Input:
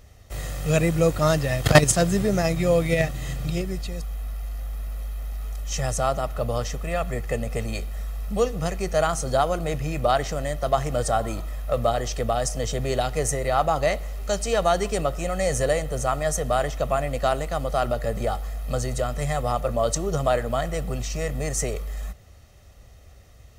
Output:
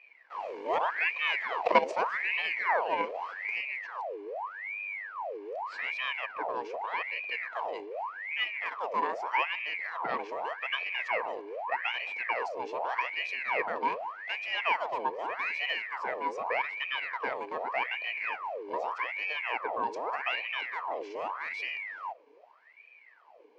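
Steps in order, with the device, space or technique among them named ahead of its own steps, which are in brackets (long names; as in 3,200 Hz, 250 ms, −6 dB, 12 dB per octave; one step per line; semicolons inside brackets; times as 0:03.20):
voice changer toy (ring modulator whose carrier an LFO sweeps 1,400 Hz, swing 75%, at 0.83 Hz; loudspeaker in its box 460–3,800 Hz, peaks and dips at 470 Hz +6 dB, 670 Hz +5 dB, 960 Hz +7 dB, 1,400 Hz −7 dB, 2,300 Hz +4 dB, 3,600 Hz −9 dB)
level −7.5 dB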